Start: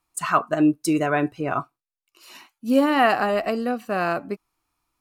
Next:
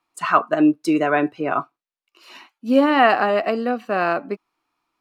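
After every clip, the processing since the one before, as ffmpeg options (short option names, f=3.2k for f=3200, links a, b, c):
-filter_complex "[0:a]acrossover=split=180 4800:gain=0.126 1 0.2[a][b][c];[a][b][c]amix=inputs=3:normalize=0,volume=3.5dB"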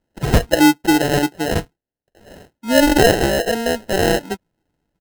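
-af "aecho=1:1:5.9:0.34,acrusher=samples=38:mix=1:aa=0.000001,volume=2.5dB"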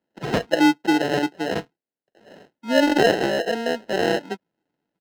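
-filter_complex "[0:a]acrossover=split=150 5600:gain=0.0631 1 0.178[a][b][c];[a][b][c]amix=inputs=3:normalize=0,volume=-4dB"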